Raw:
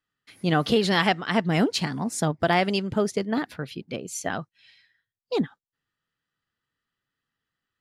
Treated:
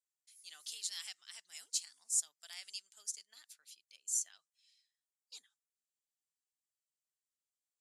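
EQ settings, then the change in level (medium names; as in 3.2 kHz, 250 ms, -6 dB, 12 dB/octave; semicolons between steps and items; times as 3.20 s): band-pass filter 7.5 kHz, Q 2.6; differentiator; +3.0 dB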